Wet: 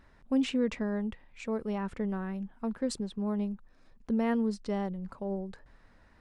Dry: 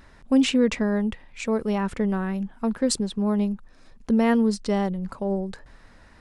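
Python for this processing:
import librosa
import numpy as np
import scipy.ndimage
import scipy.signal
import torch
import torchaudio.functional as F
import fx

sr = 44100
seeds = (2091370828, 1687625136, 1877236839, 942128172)

y = fx.high_shelf(x, sr, hz=4100.0, db=-7.5)
y = y * librosa.db_to_amplitude(-8.5)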